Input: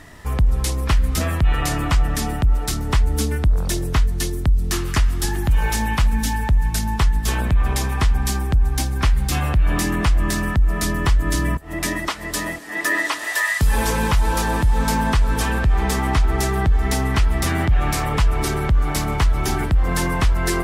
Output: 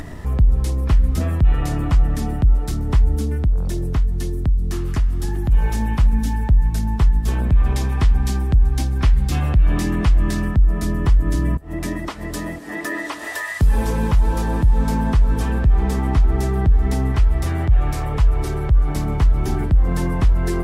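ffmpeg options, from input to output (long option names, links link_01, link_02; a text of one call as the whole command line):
ffmpeg -i in.wav -filter_complex "[0:a]asettb=1/sr,asplit=3[link_01][link_02][link_03];[link_01]atrim=end=3.154[link_04];[link_02]atrim=start=3.15:end=5.52,asetpts=PTS-STARTPTS,afade=type=in:duration=0.004:curve=qsin,afade=type=out:start_time=2.366:duration=0.004:curve=qsin,acompressor=threshold=-21dB:ratio=1.5:attack=3.2:release=140:knee=1:detection=peak[link_05];[link_03]atrim=start=5.516[link_06];[link_04][link_05]acrossfade=duration=0.004:curve1=hsin:curve2=qsin[link_07];[link_07][link_06]acrossfade=duration=0.004:curve1=qsin:curve2=hsin,asettb=1/sr,asplit=3[link_08][link_09][link_10];[link_08]atrim=end=7.524[link_11];[link_09]atrim=start=7.52:end=10.48,asetpts=PTS-STARTPTS,afade=type=in:duration=0.004:curve=qsin,afade=type=out:start_time=2.956:duration=0.004:curve=qsin,equalizer=frequency=3500:width=0.49:gain=5[link_12];[link_10]atrim=start=10.476[link_13];[link_11][link_12]acrossfade=duration=0.004:curve1=hsin:curve2=qsin[link_14];[link_14][link_13]acrossfade=duration=0.004:curve1=qsin:curve2=hsin,asettb=1/sr,asplit=3[link_15][link_16][link_17];[link_15]atrim=end=17.124[link_18];[link_16]atrim=start=17.12:end=18.89,asetpts=PTS-STARTPTS,afade=type=in:duration=0.004:curve=qsin,afade=type=out:start_time=1.766:duration=0.004:curve=qsin,equalizer=frequency=220:width_type=o:width=0.77:gain=-9.5[link_19];[link_17]atrim=start=18.886[link_20];[link_18][link_19]acrossfade=duration=0.004:curve1=hsin:curve2=qsin[link_21];[link_21][link_20]acrossfade=duration=0.004:curve1=qsin:curve2=hsin,tiltshelf=frequency=730:gain=6.5,acompressor=mode=upward:threshold=-18dB:ratio=2.5,volume=-4dB" out.wav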